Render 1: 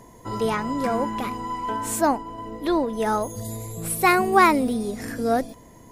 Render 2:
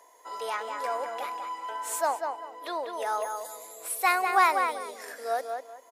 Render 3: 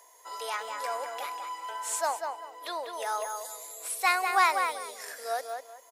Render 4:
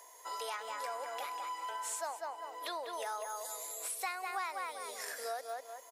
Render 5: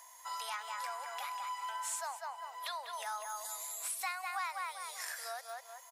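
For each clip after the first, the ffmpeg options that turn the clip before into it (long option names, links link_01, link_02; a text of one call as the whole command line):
ffmpeg -i in.wav -filter_complex "[0:a]highpass=frequency=540:width=0.5412,highpass=frequency=540:width=1.3066,asplit=2[link_01][link_02];[link_02]adelay=195,lowpass=frequency=3000:poles=1,volume=-5dB,asplit=2[link_03][link_04];[link_04]adelay=195,lowpass=frequency=3000:poles=1,volume=0.25,asplit=2[link_05][link_06];[link_06]adelay=195,lowpass=frequency=3000:poles=1,volume=0.25[link_07];[link_01][link_03][link_05][link_07]amix=inputs=4:normalize=0,volume=-5dB" out.wav
ffmpeg -i in.wav -filter_complex "[0:a]highshelf=frequency=3100:gain=9,acrossover=split=8700[link_01][link_02];[link_02]acompressor=threshold=-43dB:ratio=4:attack=1:release=60[link_03];[link_01][link_03]amix=inputs=2:normalize=0,equalizer=frequency=230:width=1.2:gain=-8,volume=-2.5dB" out.wav
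ffmpeg -i in.wav -af "acompressor=threshold=-39dB:ratio=4,volume=1dB" out.wav
ffmpeg -i in.wav -af "highpass=frequency=780:width=0.5412,highpass=frequency=780:width=1.3066,volume=1dB" out.wav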